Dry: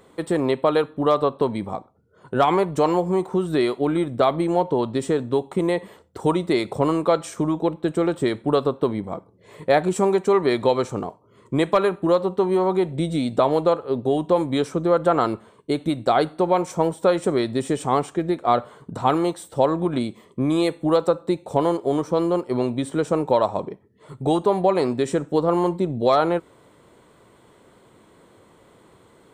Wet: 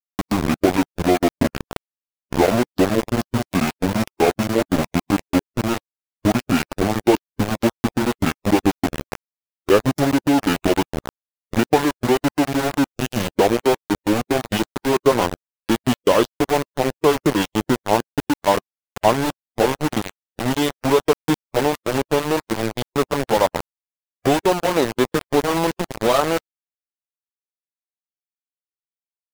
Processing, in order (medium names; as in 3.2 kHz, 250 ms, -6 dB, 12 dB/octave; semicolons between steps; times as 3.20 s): pitch bend over the whole clip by -9 st ending unshifted; small samples zeroed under -21 dBFS; harmonic-percussive split percussive +4 dB; trim +1 dB